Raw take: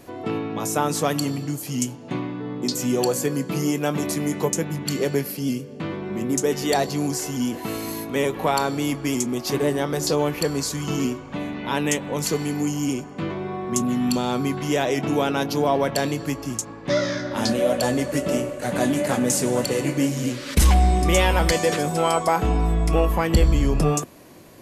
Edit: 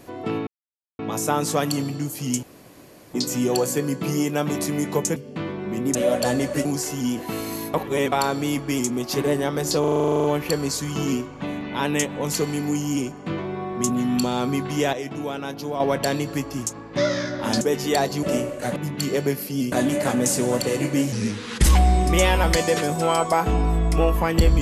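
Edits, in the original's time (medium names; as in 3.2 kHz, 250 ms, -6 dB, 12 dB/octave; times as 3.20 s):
0.47 s: insert silence 0.52 s
1.91–2.62 s: room tone
4.64–5.60 s: move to 18.76 s
6.39–7.01 s: swap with 17.53–18.23 s
8.10–8.48 s: reverse
10.16 s: stutter 0.04 s, 12 plays
14.85–15.72 s: gain -7.5 dB
20.16–20.60 s: speed 84%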